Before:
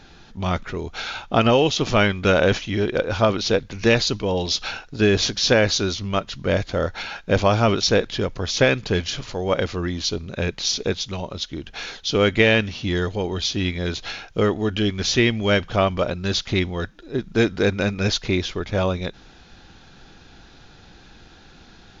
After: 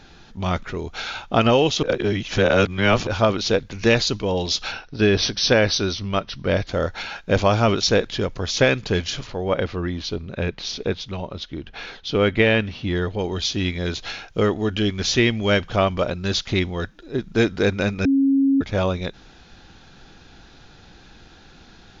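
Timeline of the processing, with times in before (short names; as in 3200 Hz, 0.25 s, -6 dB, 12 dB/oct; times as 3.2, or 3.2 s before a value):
1.83–3.07 reverse
4.72–6.67 brick-wall FIR low-pass 6200 Hz
9.27–13.19 air absorption 170 m
18.05–18.61 bleep 273 Hz -14 dBFS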